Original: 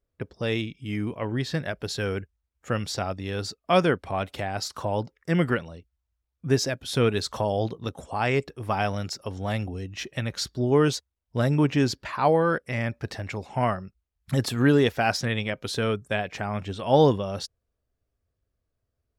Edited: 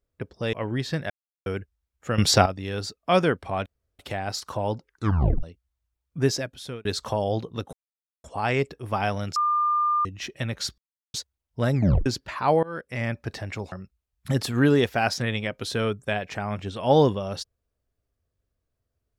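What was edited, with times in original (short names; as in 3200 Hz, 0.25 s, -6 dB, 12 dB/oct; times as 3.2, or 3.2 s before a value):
0.53–1.14 cut
1.71–2.07 mute
2.79–3.07 gain +12 dB
4.27 insert room tone 0.33 s
5.15 tape stop 0.56 s
6.58–7.13 fade out
8.01 insert silence 0.51 s
9.13–9.82 bleep 1200 Hz -19.5 dBFS
10.55–10.91 mute
11.51 tape stop 0.32 s
12.4–12.8 fade in, from -23.5 dB
13.49–13.75 cut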